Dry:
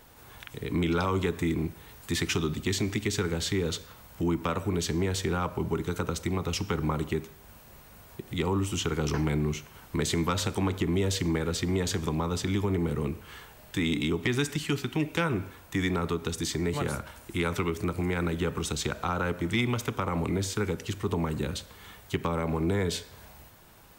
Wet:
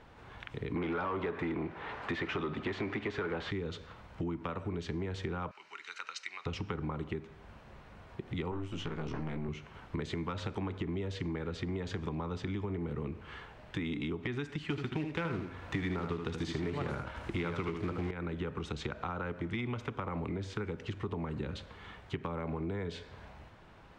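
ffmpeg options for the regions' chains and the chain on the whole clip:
-filter_complex "[0:a]asettb=1/sr,asplit=3[s0][s1][s2];[s0]atrim=end=0.764[s3];[s1]atrim=start=0.76:end=3.51,asetpts=PTS-STARTPTS,afade=t=in:d=0.004:c=qsin,afade=t=out:st=2.746:d=0.004:c=qsin,asplit=2[s4][s5];[s5]highpass=f=720:p=1,volume=10,asoftclip=type=tanh:threshold=0.168[s6];[s4][s6]amix=inputs=2:normalize=0,lowpass=f=1000:p=1,volume=0.501,equalizer=f=1700:w=0.31:g=5.5[s7];[s2]atrim=start=3.506[s8];[s3][s7]acrossfade=d=0.004:c1=hsin:c2=qsin[s9];[s9][s8]acrossfade=d=0.004:c1=qsin:c2=hsin,asettb=1/sr,asplit=3[s10][s11][s12];[s10]atrim=end=5.514[s13];[s11]atrim=start=5.51:end=6.46,asetpts=PTS-STARTPTS,afade=t=in:d=0.004:c=qsin,afade=t=out:st=0.946:d=0.004:c=qsin,asuperpass=centerf=3400:order=4:qfactor=0.71,highshelf=f=3800:g=12,bandreject=f=3400:w=5.6[s14];[s12]atrim=start=6.456[s15];[s13][s14]acrossfade=d=0.004:c1=hsin:c2=qsin[s16];[s16][s15]acrossfade=d=0.004:c1=qsin:c2=hsin,asettb=1/sr,asplit=3[s17][s18][s19];[s17]atrim=end=8.514[s20];[s18]atrim=start=8.51:end=9.49,asetpts=PTS-STARTPTS,afade=t=in:d=0.004:c=qsin,afade=t=out:st=0.976:d=0.004:c=qsin,aeval=exprs='(tanh(17.8*val(0)+0.7)-tanh(0.7))/17.8':c=same,asplit=2[s21][s22];[s22]adelay=18,volume=0.631[s23];[s21][s23]amix=inputs=2:normalize=0,atrim=end_sample=43218[s24];[s19]atrim=start=9.486[s25];[s20][s24]acrossfade=d=0.004:c1=hsin:c2=qsin[s26];[s26][s25]acrossfade=d=0.004:c1=qsin:c2=hsin,asettb=1/sr,asplit=3[s27][s28][s29];[s27]atrim=end=14.704[s30];[s28]atrim=start=14.7:end=18.11,asetpts=PTS-STARTPTS,afade=t=in:d=0.004:c=qsin,afade=t=out:st=3.406:d=0.004:c=qsin,acontrast=82,acrusher=bits=3:mode=log:mix=0:aa=0.000001,aecho=1:1:77:0.447,atrim=end_sample=150381[s31];[s29]atrim=start=18.106[s32];[s30][s31]acrossfade=d=0.004:c1=hsin:c2=qsin[s33];[s33][s32]acrossfade=d=0.004:c1=qsin:c2=hsin,lowpass=2800,acompressor=threshold=0.02:ratio=5"

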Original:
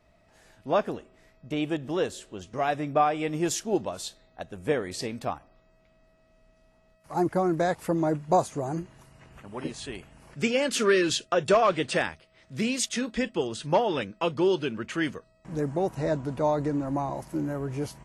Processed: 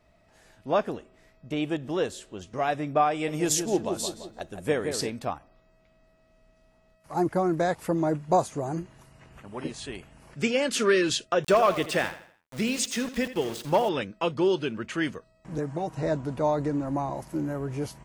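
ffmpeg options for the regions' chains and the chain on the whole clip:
-filter_complex "[0:a]asettb=1/sr,asplit=3[s0][s1][s2];[s0]atrim=end=3.114[s3];[s1]atrim=start=3.11:end=5.1,asetpts=PTS-STARTPTS,afade=t=in:d=0.004:c=qsin,afade=t=out:st=1.986:d=0.004:c=qsin,highshelf=f=5700:g=9,asplit=2[s4][s5];[s5]adelay=170,lowpass=f=1600:p=1,volume=0.501,asplit=2[s6][s7];[s7]adelay=170,lowpass=f=1600:p=1,volume=0.49,asplit=2[s8][s9];[s9]adelay=170,lowpass=f=1600:p=1,volume=0.49,asplit=2[s10][s11];[s11]adelay=170,lowpass=f=1600:p=1,volume=0.49,asplit=2[s12][s13];[s13]adelay=170,lowpass=f=1600:p=1,volume=0.49,asplit=2[s14][s15];[s15]adelay=170,lowpass=f=1600:p=1,volume=0.49[s16];[s4][s6][s8][s10][s12][s14][s16]amix=inputs=7:normalize=0,atrim=end_sample=87759[s17];[s2]atrim=start=5.096[s18];[s3][s17]acrossfade=d=0.004:c1=hsin:c2=qsin[s19];[s19][s18]acrossfade=d=0.004:c1=qsin:c2=hsin,asettb=1/sr,asplit=3[s20][s21][s22];[s20]atrim=end=11.444[s23];[s21]atrim=start=11.44:end=13.89,asetpts=PTS-STARTPTS,afade=t=in:d=0.004:c=qsin,afade=t=out:st=2.446:d=0.004:c=qsin,aeval=exprs='val(0)*gte(abs(val(0)),0.015)':c=same,aecho=1:1:82|164|246|328:0.211|0.0824|0.0321|0.0125,atrim=end_sample=108045[s24];[s22]atrim=start=13.886[s25];[s23][s24]acrossfade=d=0.004:c1=hsin:c2=qsin[s26];[s26][s25]acrossfade=d=0.004:c1=qsin:c2=hsin,asettb=1/sr,asplit=3[s27][s28][s29];[s27]atrim=end=15.584[s30];[s28]atrim=start=15.58:end=16.03,asetpts=PTS-STARTPTS,afade=t=in:d=0.004:c=qsin,afade=t=out:st=0.446:d=0.004:c=qsin,lowpass=9300,aecho=1:1:6.5:0.5,atrim=end_sample=19845,acrossover=split=700|2200[s31][s32][s33];[s31]acompressor=threshold=0.0316:ratio=4[s34];[s32]acompressor=threshold=0.0224:ratio=4[s35];[s33]acompressor=threshold=0.00251:ratio=4[s36];[s34][s35][s36]amix=inputs=3:normalize=0[s37];[s29]atrim=start=16.026[s38];[s30][s37]acrossfade=d=0.004:c1=hsin:c2=qsin[s39];[s39][s38]acrossfade=d=0.004:c1=qsin:c2=hsin"

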